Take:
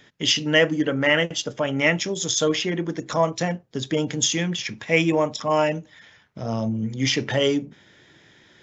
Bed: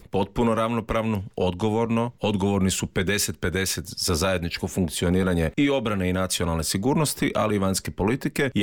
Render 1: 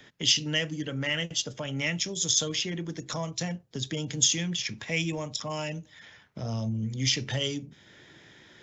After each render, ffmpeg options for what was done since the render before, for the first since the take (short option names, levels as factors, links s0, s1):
-filter_complex "[0:a]acrossover=split=150|3000[s0][s1][s2];[s1]acompressor=threshold=0.00891:ratio=2.5[s3];[s0][s3][s2]amix=inputs=3:normalize=0"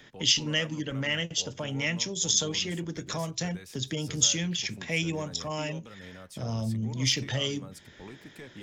-filter_complex "[1:a]volume=0.0708[s0];[0:a][s0]amix=inputs=2:normalize=0"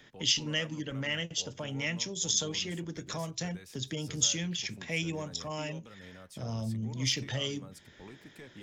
-af "volume=0.631"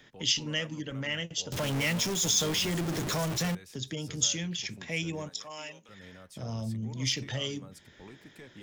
-filter_complex "[0:a]asettb=1/sr,asplit=3[s0][s1][s2];[s0]atrim=end=1.524[s3];[s1]atrim=start=1.52:end=3.55,asetpts=PTS-STARTPTS,afade=t=in:d=0.004:c=qsin,afade=t=out:st=2.026:d=0.004:c=qsin,aeval=exprs='val(0)+0.5*0.0376*sgn(val(0))':c=same[s4];[s2]atrim=start=3.546[s5];[s3][s4]acrossfade=d=0.004:c1=hsin:c2=qsin[s6];[s6][s5]acrossfade=d=0.004:c1=qsin:c2=hsin,asettb=1/sr,asplit=3[s7][s8][s9];[s7]atrim=end=5.294[s10];[s8]atrim=start=5.29:end=5.89,asetpts=PTS-STARTPTS,afade=t=in:d=0.004:c=qsin,afade=t=out:st=0.596:d=0.004:c=qsin,highpass=f=1100:p=1[s11];[s9]atrim=start=5.886[s12];[s10][s11]acrossfade=d=0.004:c1=hsin:c2=qsin[s13];[s13][s12]acrossfade=d=0.004:c1=qsin:c2=hsin"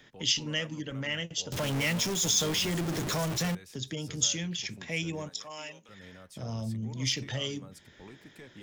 -af anull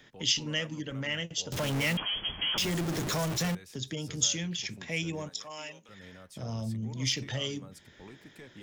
-filter_complex "[0:a]asettb=1/sr,asplit=3[s0][s1][s2];[s0]atrim=end=1.974[s3];[s1]atrim=start=1.97:end=2.58,asetpts=PTS-STARTPTS,afade=t=in:d=0.004:c=qsin,afade=t=out:st=0.606:d=0.004:c=qsin,lowpass=f=2900:t=q:w=0.5098,lowpass=f=2900:t=q:w=0.6013,lowpass=f=2900:t=q:w=0.9,lowpass=f=2900:t=q:w=2.563,afreqshift=-3400[s4];[s2]atrim=start=2.576[s5];[s3][s4]acrossfade=d=0.004:c1=hsin:c2=qsin[s6];[s6][s5]acrossfade=d=0.004:c1=qsin:c2=hsin"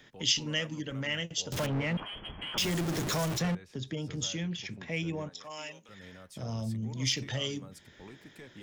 -filter_complex "[0:a]asettb=1/sr,asplit=3[s0][s1][s2];[s0]atrim=end=1.664[s3];[s1]atrim=start=1.66:end=2.57,asetpts=PTS-STARTPTS,afade=t=in:d=0.004:c=qsin,afade=t=out:st=0.906:d=0.004:c=qsin,adynamicsmooth=sensitivity=0.5:basefreq=1700[s4];[s2]atrim=start=2.566[s5];[s3][s4]acrossfade=d=0.004:c1=hsin:c2=qsin[s6];[s6][s5]acrossfade=d=0.004:c1=qsin:c2=hsin,asplit=3[s7][s8][s9];[s7]afade=t=out:st=3.38:d=0.02[s10];[s8]aemphasis=mode=reproduction:type=75fm,afade=t=in:st=3.38:d=0.02,afade=t=out:st=5.43:d=0.02[s11];[s9]afade=t=in:st=5.43:d=0.02[s12];[s10][s11][s12]amix=inputs=3:normalize=0"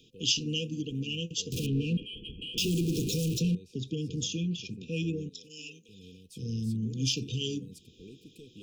-af "afftfilt=real='re*(1-between(b*sr/4096,510,2400))':imag='im*(1-between(b*sr/4096,510,2400))':win_size=4096:overlap=0.75,adynamicequalizer=threshold=0.00708:dfrequency=220:dqfactor=0.75:tfrequency=220:tqfactor=0.75:attack=5:release=100:ratio=0.375:range=2:mode=boostabove:tftype=bell"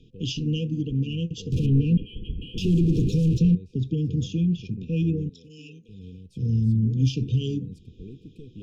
-af "aemphasis=mode=reproduction:type=riaa"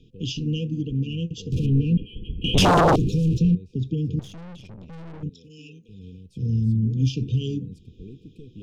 -filter_complex "[0:a]asettb=1/sr,asplit=3[s0][s1][s2];[s0]atrim=end=2.444[s3];[s1]atrim=start=2.44:end=2.96,asetpts=PTS-STARTPTS,afade=t=in:d=0.004:c=qsin,afade=t=out:st=0.516:d=0.004:c=qsin,aeval=exprs='0.237*sin(PI/2*5.01*val(0)/0.237)':c=same[s4];[s2]atrim=start=2.956[s5];[s3][s4]acrossfade=d=0.004:c1=hsin:c2=qsin[s6];[s6][s5]acrossfade=d=0.004:c1=qsin:c2=hsin,asettb=1/sr,asplit=3[s7][s8][s9];[s7]atrim=end=4.194[s10];[s8]atrim=start=4.19:end=5.23,asetpts=PTS-STARTPTS,afade=t=in:d=0.004:c=qsin,afade=t=out:st=1.036:d=0.004:c=qsin,aeval=exprs='(tanh(89.1*val(0)+0.6)-tanh(0.6))/89.1':c=same[s11];[s9]atrim=start=5.226[s12];[s10][s11]acrossfade=d=0.004:c1=hsin:c2=qsin[s13];[s13][s12]acrossfade=d=0.004:c1=qsin:c2=hsin"